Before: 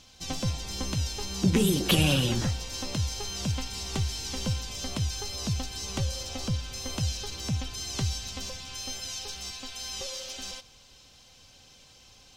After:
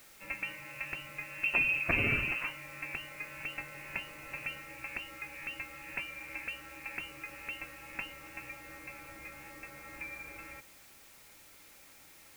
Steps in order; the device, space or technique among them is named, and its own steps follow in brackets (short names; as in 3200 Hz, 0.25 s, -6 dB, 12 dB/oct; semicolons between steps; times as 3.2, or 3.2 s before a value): scrambled radio voice (BPF 330–2700 Hz; inverted band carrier 2900 Hz; white noise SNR 18 dB)